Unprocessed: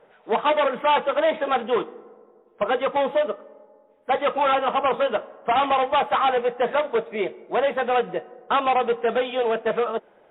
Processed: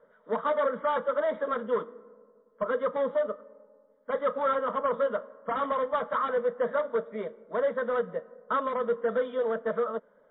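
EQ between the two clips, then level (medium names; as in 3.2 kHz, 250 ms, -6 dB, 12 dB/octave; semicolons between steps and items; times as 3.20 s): distance through air 170 m; static phaser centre 520 Hz, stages 8; -3.5 dB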